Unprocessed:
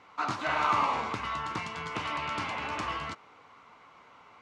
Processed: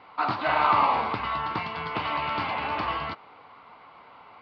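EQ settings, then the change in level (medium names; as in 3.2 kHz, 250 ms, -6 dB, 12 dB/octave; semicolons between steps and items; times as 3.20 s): Chebyshev low-pass 4.7 kHz, order 5; peaking EQ 780 Hz +5.5 dB 0.88 oct; +3.5 dB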